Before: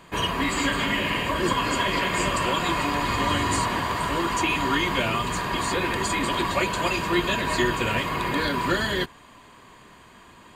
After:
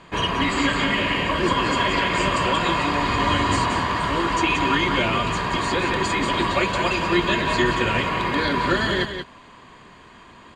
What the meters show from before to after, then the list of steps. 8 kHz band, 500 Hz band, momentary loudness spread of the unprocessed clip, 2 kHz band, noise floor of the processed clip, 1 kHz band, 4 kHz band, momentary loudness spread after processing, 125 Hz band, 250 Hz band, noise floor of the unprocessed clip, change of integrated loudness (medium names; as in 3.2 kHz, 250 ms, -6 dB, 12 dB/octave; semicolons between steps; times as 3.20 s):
-2.5 dB, +3.5 dB, 3 LU, +3.0 dB, -47 dBFS, +3.5 dB, +3.0 dB, 3 LU, +3.5 dB, +3.5 dB, -50 dBFS, +3.0 dB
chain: low-pass 5.8 kHz 12 dB/octave; on a send: delay 180 ms -7.5 dB; on the sum: trim +2.5 dB